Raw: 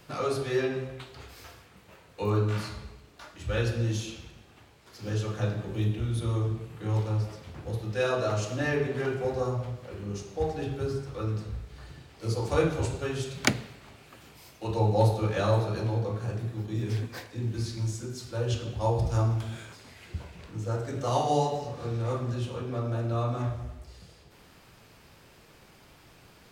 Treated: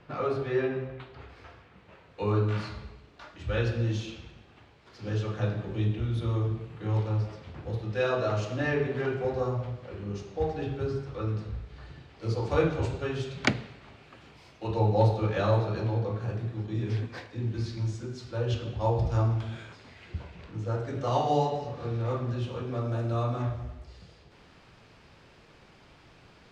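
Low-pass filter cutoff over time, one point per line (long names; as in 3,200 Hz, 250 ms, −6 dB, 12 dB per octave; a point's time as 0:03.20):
0:01.42 2,400 Hz
0:02.34 4,100 Hz
0:22.35 4,100 Hz
0:23.10 8,800 Hz
0:23.44 4,800 Hz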